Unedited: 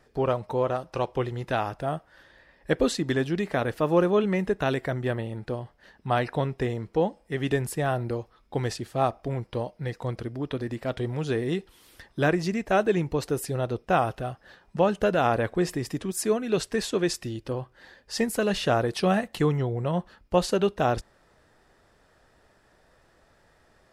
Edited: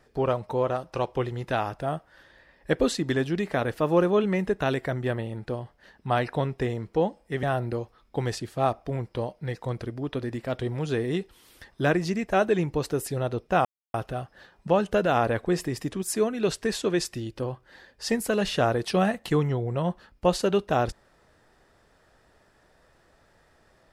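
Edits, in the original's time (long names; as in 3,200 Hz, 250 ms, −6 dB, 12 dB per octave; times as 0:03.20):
0:07.43–0:07.81: remove
0:14.03: splice in silence 0.29 s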